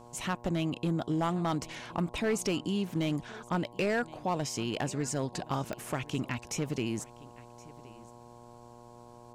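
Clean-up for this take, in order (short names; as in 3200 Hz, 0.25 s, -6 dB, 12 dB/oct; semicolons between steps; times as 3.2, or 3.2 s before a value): clip repair -23 dBFS; de-click; de-hum 119.6 Hz, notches 9; inverse comb 1.07 s -21.5 dB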